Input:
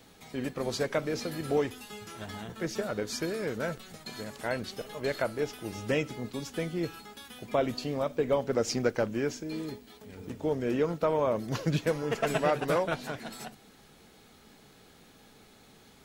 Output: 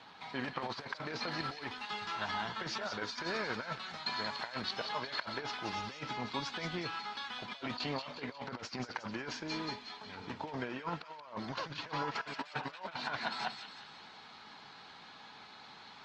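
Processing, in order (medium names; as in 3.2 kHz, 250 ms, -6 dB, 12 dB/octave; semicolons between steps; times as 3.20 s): resonant low shelf 630 Hz -8 dB, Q 1.5; compressor with a negative ratio -40 dBFS, ratio -0.5; cabinet simulation 110–4700 Hz, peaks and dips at 970 Hz +7 dB, 1.5 kHz +3 dB, 4.3 kHz +4 dB; on a send: feedback echo behind a high-pass 180 ms, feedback 49%, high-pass 2.3 kHz, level -5.5 dB; on the sum: Opus 32 kbps 48 kHz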